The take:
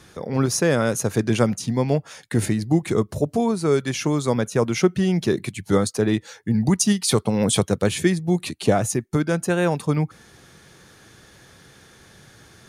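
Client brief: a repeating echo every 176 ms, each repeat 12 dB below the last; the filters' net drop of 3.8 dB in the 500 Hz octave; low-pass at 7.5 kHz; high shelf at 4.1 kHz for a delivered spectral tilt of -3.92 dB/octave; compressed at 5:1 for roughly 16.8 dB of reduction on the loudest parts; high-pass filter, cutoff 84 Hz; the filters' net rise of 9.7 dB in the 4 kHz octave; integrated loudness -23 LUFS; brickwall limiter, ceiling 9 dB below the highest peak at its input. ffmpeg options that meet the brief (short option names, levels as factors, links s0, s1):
-af "highpass=84,lowpass=7500,equalizer=f=500:t=o:g=-5,equalizer=f=4000:t=o:g=7.5,highshelf=f=4100:g=8.5,acompressor=threshold=0.0316:ratio=5,alimiter=limit=0.0631:level=0:latency=1,aecho=1:1:176|352|528:0.251|0.0628|0.0157,volume=3.98"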